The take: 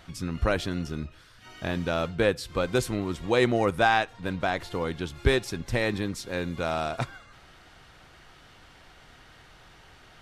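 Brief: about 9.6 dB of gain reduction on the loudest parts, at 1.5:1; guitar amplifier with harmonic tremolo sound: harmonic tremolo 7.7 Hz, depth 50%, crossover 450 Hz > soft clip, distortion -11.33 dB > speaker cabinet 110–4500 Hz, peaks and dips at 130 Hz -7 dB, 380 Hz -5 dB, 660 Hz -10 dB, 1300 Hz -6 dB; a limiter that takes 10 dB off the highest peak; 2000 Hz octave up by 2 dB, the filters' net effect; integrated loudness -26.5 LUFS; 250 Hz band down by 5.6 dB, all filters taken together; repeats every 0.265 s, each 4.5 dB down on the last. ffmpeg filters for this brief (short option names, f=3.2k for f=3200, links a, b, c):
-filter_complex "[0:a]equalizer=f=250:t=o:g=-5,equalizer=f=2k:t=o:g=4.5,acompressor=threshold=-43dB:ratio=1.5,alimiter=level_in=1.5dB:limit=-24dB:level=0:latency=1,volume=-1.5dB,aecho=1:1:265|530|795|1060|1325|1590|1855|2120|2385:0.596|0.357|0.214|0.129|0.0772|0.0463|0.0278|0.0167|0.01,acrossover=split=450[a][b];[a]aeval=exprs='val(0)*(1-0.5/2+0.5/2*cos(2*PI*7.7*n/s))':c=same[c];[b]aeval=exprs='val(0)*(1-0.5/2-0.5/2*cos(2*PI*7.7*n/s))':c=same[d];[c][d]amix=inputs=2:normalize=0,asoftclip=threshold=-35.5dB,highpass=110,equalizer=f=130:t=q:w=4:g=-7,equalizer=f=380:t=q:w=4:g=-5,equalizer=f=660:t=q:w=4:g=-10,equalizer=f=1.3k:t=q:w=4:g=-6,lowpass=f=4.5k:w=0.5412,lowpass=f=4.5k:w=1.3066,volume=19.5dB"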